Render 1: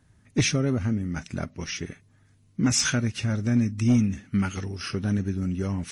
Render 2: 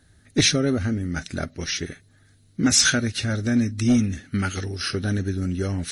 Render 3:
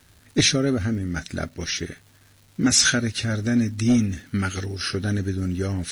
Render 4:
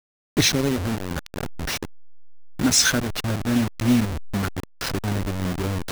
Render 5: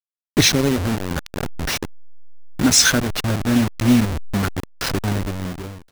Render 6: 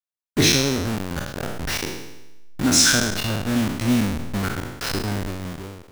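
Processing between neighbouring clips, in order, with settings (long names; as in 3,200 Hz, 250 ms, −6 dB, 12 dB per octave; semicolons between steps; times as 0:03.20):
thirty-one-band graphic EQ 125 Hz −9 dB, 200 Hz −7 dB, 1,000 Hz −11 dB, 1,600 Hz +4 dB, 2,500 Hz −4 dB, 4,000 Hz +9 dB, 10,000 Hz +6 dB; level +5 dB
surface crackle 580 per second −44 dBFS
hold until the input has moved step −21 dBFS
fade-out on the ending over 0.87 s; level +4 dB
peak hold with a decay on every bin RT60 0.94 s; level −5.5 dB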